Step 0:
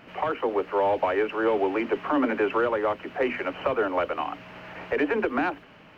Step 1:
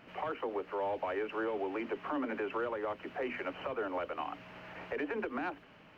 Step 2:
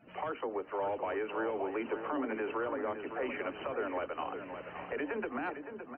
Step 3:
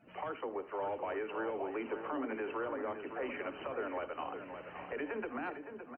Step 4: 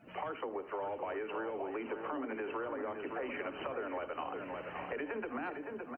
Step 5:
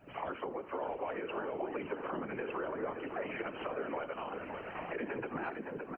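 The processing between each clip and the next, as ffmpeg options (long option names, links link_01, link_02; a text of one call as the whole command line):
ffmpeg -i in.wav -af "alimiter=limit=-20dB:level=0:latency=1:release=186,volume=-7dB" out.wav
ffmpeg -i in.wav -filter_complex "[0:a]asplit=2[link_01][link_02];[link_02]adelay=564,lowpass=frequency=2500:poles=1,volume=-8dB,asplit=2[link_03][link_04];[link_04]adelay=564,lowpass=frequency=2500:poles=1,volume=0.48,asplit=2[link_05][link_06];[link_06]adelay=564,lowpass=frequency=2500:poles=1,volume=0.48,asplit=2[link_07][link_08];[link_08]adelay=564,lowpass=frequency=2500:poles=1,volume=0.48,asplit=2[link_09][link_10];[link_10]adelay=564,lowpass=frequency=2500:poles=1,volume=0.48,asplit=2[link_11][link_12];[link_12]adelay=564,lowpass=frequency=2500:poles=1,volume=0.48[link_13];[link_01][link_03][link_05][link_07][link_09][link_11][link_13]amix=inputs=7:normalize=0,afftdn=noise_reduction=23:noise_floor=-55" out.wav
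ffmpeg -i in.wav -af "aecho=1:1:53|78:0.133|0.133,volume=-3dB" out.wav
ffmpeg -i in.wav -af "acompressor=threshold=-40dB:ratio=6,volume=4.5dB" out.wav
ffmpeg -i in.wav -af "afftfilt=real='hypot(re,im)*cos(2*PI*random(0))':imag='hypot(re,im)*sin(2*PI*random(1))':win_size=512:overlap=0.75,volume=6.5dB" out.wav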